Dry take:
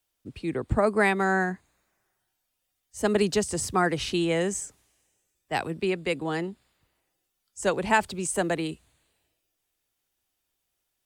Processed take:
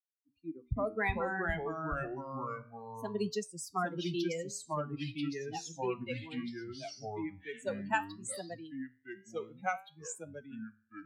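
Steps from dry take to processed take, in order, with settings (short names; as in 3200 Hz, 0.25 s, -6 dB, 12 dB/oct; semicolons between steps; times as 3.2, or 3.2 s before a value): per-bin expansion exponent 3; flange 0.59 Hz, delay 10 ms, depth 5.5 ms, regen -74%; echoes that change speed 0.237 s, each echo -3 st, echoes 3; gain -1.5 dB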